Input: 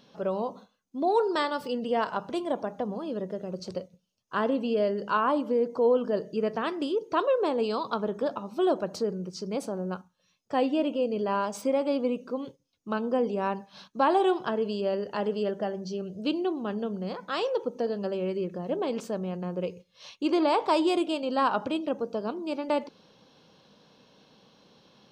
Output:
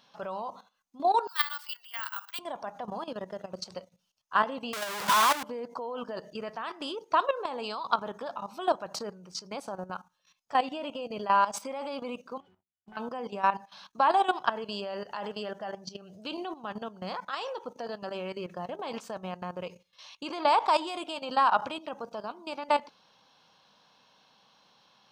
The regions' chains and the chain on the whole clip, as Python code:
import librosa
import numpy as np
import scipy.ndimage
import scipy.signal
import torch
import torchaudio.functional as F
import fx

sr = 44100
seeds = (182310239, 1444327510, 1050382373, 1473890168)

y = fx.chain(x, sr, fx.highpass(hz=1400.0, slope=24),
    fx.resample_bad(factor=2, down='filtered', up='zero_stuff'), at=(1.27, 2.39))
y = fx.chain(y, sr, fx.clip_1bit(),
    fx.highpass(hz=110.0, slope=12),
    fx.band_squash(depth_pct=70), at=(4.73, 5.43))
y = fx.chain(y, sr, fx.hum_notches(base_hz=50, count=7),
    fx.octave_resonator(note='F#', decay_s=0.22),
    fx.leveller(passes=2), at=(12.4, 12.97))
y = fx.low_shelf_res(y, sr, hz=600.0, db=-10.0, q=1.5)
y = fx.level_steps(y, sr, step_db=14)
y = F.gain(torch.from_numpy(y), 6.5).numpy()